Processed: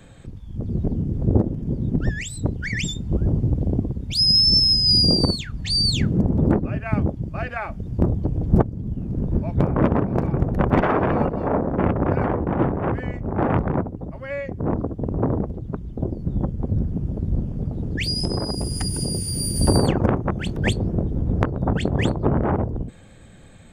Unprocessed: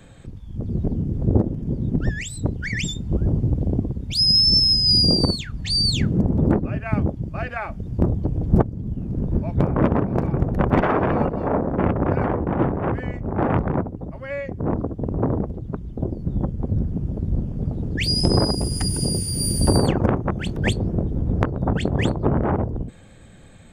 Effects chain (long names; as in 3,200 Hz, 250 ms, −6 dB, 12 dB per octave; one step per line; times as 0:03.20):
0:17.50–0:19.56: downward compressor, threshold −20 dBFS, peak gain reduction 8.5 dB